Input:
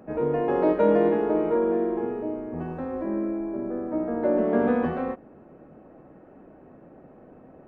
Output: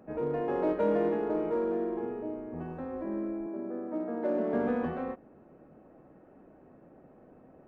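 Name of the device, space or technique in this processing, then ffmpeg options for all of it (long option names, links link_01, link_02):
parallel distortion: -filter_complex "[0:a]asplit=2[link_01][link_02];[link_02]asoftclip=type=hard:threshold=-22.5dB,volume=-11dB[link_03];[link_01][link_03]amix=inputs=2:normalize=0,asettb=1/sr,asplit=3[link_04][link_05][link_06];[link_04]atrim=end=3.464[link_07];[link_05]atrim=start=3.46:end=4.54,asetpts=PTS-STARTPTS,afade=type=in:duration=0.004:curve=qsin,afade=type=out:start_time=1.076:duration=0.004:curve=qsin,highpass=frequency=160:width=0.5412,highpass=frequency=160:width=1.3066[link_08];[link_06]atrim=start=4.536[link_09];[link_07][link_08]acrossfade=duration=0.004:curve1=hsin:curve2=qsin[link_10];[link_10][link_09]acrossfade=duration=0.004:curve1=qsin:curve2=hsin,volume=-8.5dB"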